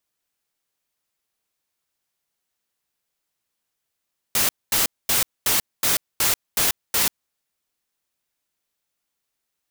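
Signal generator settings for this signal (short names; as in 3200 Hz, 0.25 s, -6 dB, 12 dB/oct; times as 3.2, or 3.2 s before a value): noise bursts white, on 0.14 s, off 0.23 s, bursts 8, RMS -19.5 dBFS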